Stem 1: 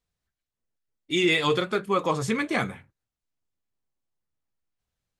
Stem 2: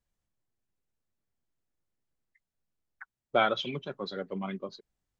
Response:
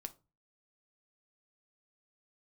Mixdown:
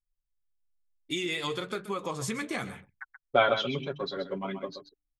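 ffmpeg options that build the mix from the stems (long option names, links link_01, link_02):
-filter_complex "[0:a]acompressor=threshold=-29dB:ratio=6,highshelf=frequency=5300:gain=8.5,volume=-1.5dB,asplit=2[link_01][link_02];[link_02]volume=-15dB[link_03];[1:a]aecho=1:1:7.3:0.59,bandreject=frequency=73.36:width_type=h:width=4,bandreject=frequency=146.72:width_type=h:width=4,bandreject=frequency=220.08:width_type=h:width=4,bandreject=frequency=293.44:width_type=h:width=4,volume=1dB,asplit=2[link_04][link_05];[link_05]volume=-9.5dB[link_06];[link_03][link_06]amix=inputs=2:normalize=0,aecho=0:1:129:1[link_07];[link_01][link_04][link_07]amix=inputs=3:normalize=0,anlmdn=0.000398"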